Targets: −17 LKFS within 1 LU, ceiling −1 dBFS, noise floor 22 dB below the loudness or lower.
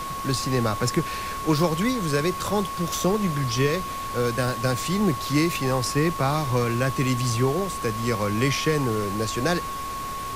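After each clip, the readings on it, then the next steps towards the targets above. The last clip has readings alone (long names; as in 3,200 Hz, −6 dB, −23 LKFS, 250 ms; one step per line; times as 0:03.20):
interfering tone 1,100 Hz; level of the tone −30 dBFS; background noise floor −32 dBFS; target noise floor −47 dBFS; integrated loudness −24.5 LKFS; sample peak −9.5 dBFS; target loudness −17.0 LKFS
→ notch filter 1,100 Hz, Q 30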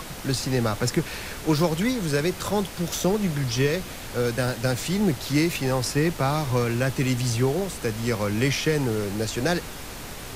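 interfering tone none found; background noise floor −37 dBFS; target noise floor −47 dBFS
→ noise reduction from a noise print 10 dB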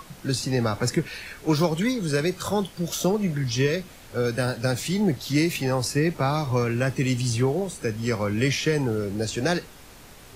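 background noise floor −47 dBFS; integrated loudness −25.0 LKFS; sample peak −10.5 dBFS; target loudness −17.0 LKFS
→ level +8 dB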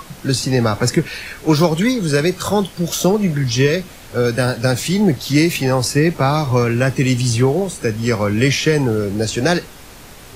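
integrated loudness −17.0 LKFS; sample peak −2.5 dBFS; background noise floor −39 dBFS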